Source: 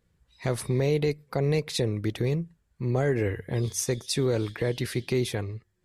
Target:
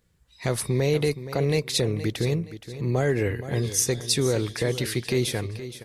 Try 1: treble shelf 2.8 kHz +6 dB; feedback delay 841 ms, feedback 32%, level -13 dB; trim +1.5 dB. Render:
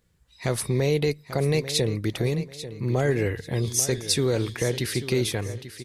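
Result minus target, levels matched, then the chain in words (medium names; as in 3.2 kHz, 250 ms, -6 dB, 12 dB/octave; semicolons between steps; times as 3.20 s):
echo 370 ms late
treble shelf 2.8 kHz +6 dB; feedback delay 471 ms, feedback 32%, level -13 dB; trim +1.5 dB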